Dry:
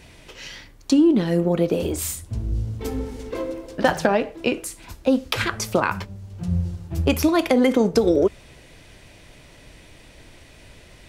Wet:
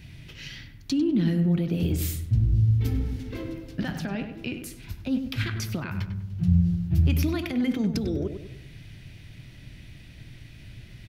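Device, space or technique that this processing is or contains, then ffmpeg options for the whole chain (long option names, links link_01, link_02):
stacked limiters: -filter_complex "[0:a]alimiter=limit=-11dB:level=0:latency=1:release=275,alimiter=limit=-15dB:level=0:latency=1:release=73,equalizer=frequency=125:width_type=o:width=1:gain=10,equalizer=frequency=500:width_type=o:width=1:gain=-12,equalizer=frequency=1000:width_type=o:width=1:gain=-11,equalizer=frequency=8000:width_type=o:width=1:gain=-11,asplit=2[link_01][link_02];[link_02]adelay=98,lowpass=frequency=2000:poles=1,volume=-7.5dB,asplit=2[link_03][link_04];[link_04]adelay=98,lowpass=frequency=2000:poles=1,volume=0.45,asplit=2[link_05][link_06];[link_06]adelay=98,lowpass=frequency=2000:poles=1,volume=0.45,asplit=2[link_07][link_08];[link_08]adelay=98,lowpass=frequency=2000:poles=1,volume=0.45,asplit=2[link_09][link_10];[link_10]adelay=98,lowpass=frequency=2000:poles=1,volume=0.45[link_11];[link_01][link_03][link_05][link_07][link_09][link_11]amix=inputs=6:normalize=0"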